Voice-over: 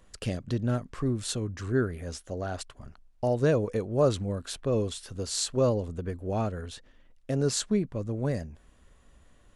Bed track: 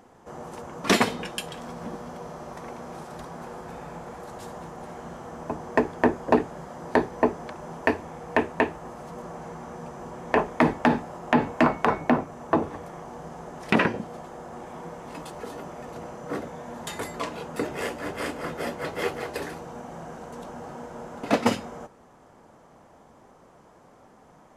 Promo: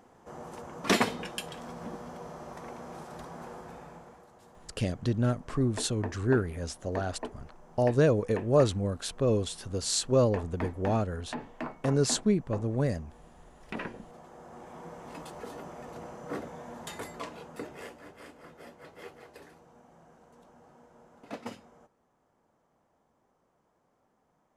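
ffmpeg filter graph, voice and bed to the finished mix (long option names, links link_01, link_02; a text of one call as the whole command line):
ffmpeg -i stem1.wav -i stem2.wav -filter_complex "[0:a]adelay=4550,volume=1dB[link_01];[1:a]volume=8dB,afade=type=out:start_time=3.49:duration=0.8:silence=0.223872,afade=type=in:start_time=13.73:duration=1.35:silence=0.237137,afade=type=out:start_time=16.61:duration=1.54:silence=0.211349[link_02];[link_01][link_02]amix=inputs=2:normalize=0" out.wav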